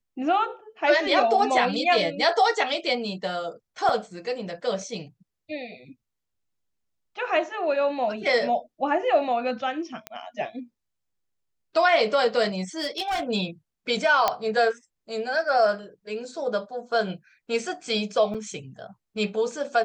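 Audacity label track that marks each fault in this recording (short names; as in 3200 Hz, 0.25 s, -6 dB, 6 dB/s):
3.890000	3.890000	gap 3.4 ms
10.070000	10.070000	pop -16 dBFS
12.780000	13.230000	clipped -23 dBFS
14.280000	14.280000	pop -7 dBFS
18.340000	18.350000	gap 5.9 ms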